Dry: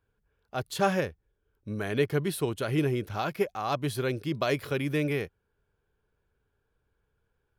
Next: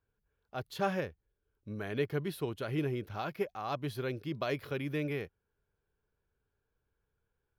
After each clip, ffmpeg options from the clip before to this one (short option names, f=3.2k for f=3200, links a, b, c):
-af "equalizer=f=8.4k:w=1.4:g=-10.5,volume=-6.5dB"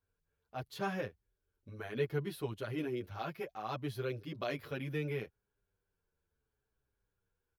-filter_complex "[0:a]asplit=2[a][b];[b]adelay=8.1,afreqshift=-0.68[c];[a][c]amix=inputs=2:normalize=1"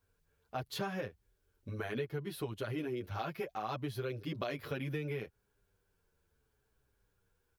-af "acompressor=threshold=-43dB:ratio=6,volume=8dB"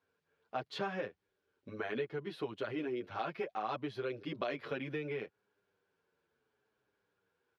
-af "highpass=230,lowpass=3.7k,volume=1.5dB"